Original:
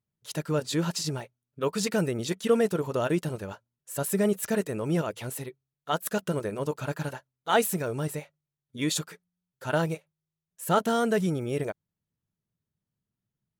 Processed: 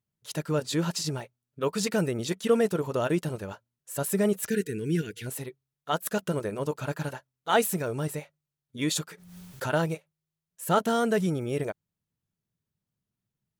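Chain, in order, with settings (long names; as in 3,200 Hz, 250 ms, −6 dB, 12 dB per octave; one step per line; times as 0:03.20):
0:04.49–0:05.27: gain on a spectral selection 490–1,400 Hz −25 dB
0:09.09–0:09.74: background raised ahead of every attack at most 52 dB per second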